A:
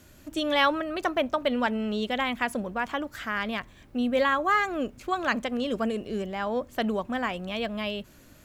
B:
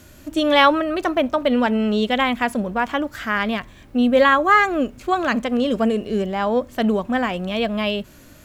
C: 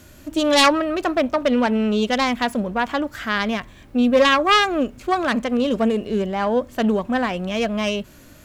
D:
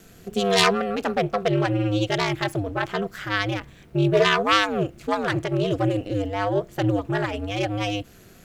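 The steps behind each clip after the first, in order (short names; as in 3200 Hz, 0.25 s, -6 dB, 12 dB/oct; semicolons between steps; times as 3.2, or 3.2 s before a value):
harmonic-percussive split harmonic +6 dB; gain +3.5 dB
self-modulated delay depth 0.19 ms
bell 930 Hz -8 dB 0.27 oct; ring modulator 100 Hz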